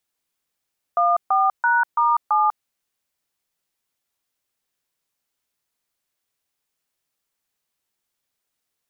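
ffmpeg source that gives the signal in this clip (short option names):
-f lavfi -i "aevalsrc='0.133*clip(min(mod(t,0.334),0.196-mod(t,0.334))/0.002,0,1)*(eq(floor(t/0.334),0)*(sin(2*PI*697*mod(t,0.334))+sin(2*PI*1209*mod(t,0.334)))+eq(floor(t/0.334),1)*(sin(2*PI*770*mod(t,0.334))+sin(2*PI*1209*mod(t,0.334)))+eq(floor(t/0.334),2)*(sin(2*PI*941*mod(t,0.334))+sin(2*PI*1477*mod(t,0.334)))+eq(floor(t/0.334),3)*(sin(2*PI*941*mod(t,0.334))+sin(2*PI*1209*mod(t,0.334)))+eq(floor(t/0.334),4)*(sin(2*PI*852*mod(t,0.334))+sin(2*PI*1209*mod(t,0.334))))':d=1.67:s=44100"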